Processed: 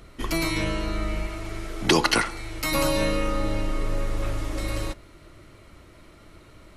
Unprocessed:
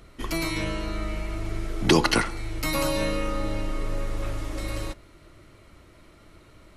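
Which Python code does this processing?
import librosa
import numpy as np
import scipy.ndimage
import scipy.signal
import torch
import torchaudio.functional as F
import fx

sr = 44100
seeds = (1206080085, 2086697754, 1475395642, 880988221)

p1 = fx.low_shelf(x, sr, hz=370.0, db=-7.0, at=(1.27, 2.72))
p2 = 10.0 ** (-14.0 / 20.0) * np.tanh(p1 / 10.0 ** (-14.0 / 20.0))
y = p1 + F.gain(torch.from_numpy(p2), -9.5).numpy()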